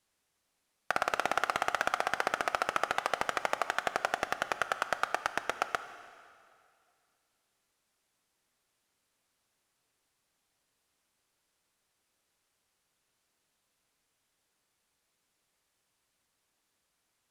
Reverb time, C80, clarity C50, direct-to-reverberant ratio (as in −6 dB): 2.4 s, 13.0 dB, 12.0 dB, 11.0 dB